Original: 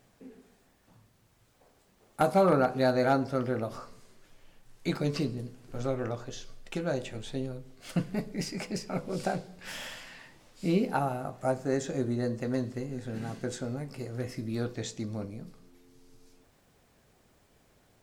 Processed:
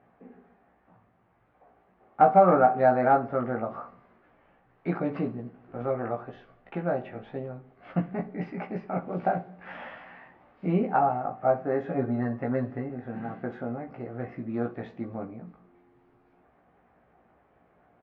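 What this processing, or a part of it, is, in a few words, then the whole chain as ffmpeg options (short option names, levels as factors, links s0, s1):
bass cabinet: -filter_complex "[0:a]asettb=1/sr,asplit=3[s0][s1][s2];[s0]atrim=end=11.884[s3];[s1]atrim=start=11.88:end=12.89,asetpts=PTS-STARTPTS,afade=t=in:d=0.004:c=qsin,afade=t=out:st=1.006:d=0.004:c=qsin,aecho=1:1:7.1:0.8,atrim=end_sample=44541[s4];[s2]atrim=start=12.886[s5];[s3][s4]acrossfade=d=0.004:c1=hsin:c2=qsin[s6];[s6][s5]acrossfade=d=0.004:c1=qsin:c2=hsin,highpass=65,equalizer=f=110:t=q:w=4:g=-9,equalizer=f=750:t=q:w=4:g=8,equalizer=f=1200:t=q:w=4:g=4,lowpass=f=2100:w=0.5412,lowpass=f=2100:w=1.3066,aecho=1:1:17|64:0.631|0.126"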